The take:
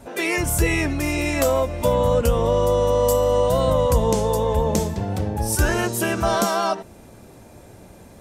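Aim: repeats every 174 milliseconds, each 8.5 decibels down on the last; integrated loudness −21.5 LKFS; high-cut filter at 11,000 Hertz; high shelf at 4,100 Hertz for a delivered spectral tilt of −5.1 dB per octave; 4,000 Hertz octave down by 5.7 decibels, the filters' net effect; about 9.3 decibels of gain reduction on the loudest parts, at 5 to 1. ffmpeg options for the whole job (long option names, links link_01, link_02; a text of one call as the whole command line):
ffmpeg -i in.wav -af "lowpass=11000,equalizer=frequency=4000:width_type=o:gain=-5.5,highshelf=frequency=4100:gain=-4,acompressor=threshold=-24dB:ratio=5,aecho=1:1:174|348|522|696:0.376|0.143|0.0543|0.0206,volume=5.5dB" out.wav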